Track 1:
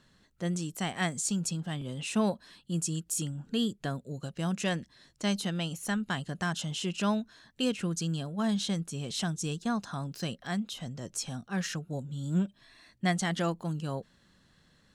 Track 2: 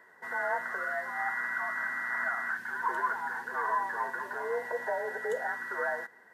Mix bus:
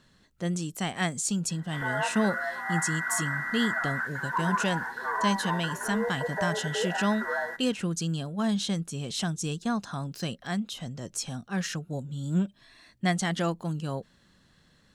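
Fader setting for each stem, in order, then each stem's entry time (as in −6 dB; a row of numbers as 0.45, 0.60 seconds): +2.0, +1.5 decibels; 0.00, 1.50 seconds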